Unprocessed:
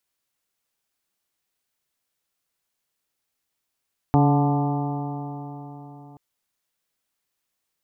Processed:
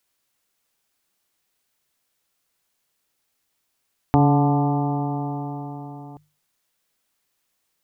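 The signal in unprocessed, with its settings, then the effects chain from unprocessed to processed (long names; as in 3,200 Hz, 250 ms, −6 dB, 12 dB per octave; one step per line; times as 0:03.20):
stiff-string partials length 2.03 s, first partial 142 Hz, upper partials −2/−10.5/−16/−6/−7.5/−18/−18 dB, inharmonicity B 0.0015, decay 4.05 s, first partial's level −16 dB
mains-hum notches 50/100/150 Hz
in parallel at 0 dB: downward compressor, threshold −28 dBFS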